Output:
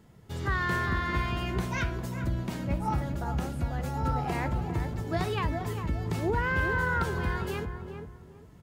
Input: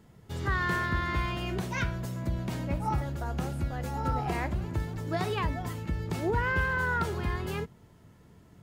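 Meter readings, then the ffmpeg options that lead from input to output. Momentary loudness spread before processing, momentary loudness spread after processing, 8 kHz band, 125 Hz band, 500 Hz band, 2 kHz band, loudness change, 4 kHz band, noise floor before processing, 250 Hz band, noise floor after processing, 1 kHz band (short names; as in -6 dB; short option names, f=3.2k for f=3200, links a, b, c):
7 LU, 7 LU, 0.0 dB, +1.0 dB, +1.0 dB, +0.5 dB, +0.5 dB, 0.0 dB, -57 dBFS, +1.5 dB, -52 dBFS, +0.5 dB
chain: -filter_complex "[0:a]asplit=2[a][b];[b]adelay=401,lowpass=f=1.1k:p=1,volume=-6dB,asplit=2[c][d];[d]adelay=401,lowpass=f=1.1k:p=1,volume=0.3,asplit=2[e][f];[f]adelay=401,lowpass=f=1.1k:p=1,volume=0.3,asplit=2[g][h];[h]adelay=401,lowpass=f=1.1k:p=1,volume=0.3[i];[a][c][e][g][i]amix=inputs=5:normalize=0"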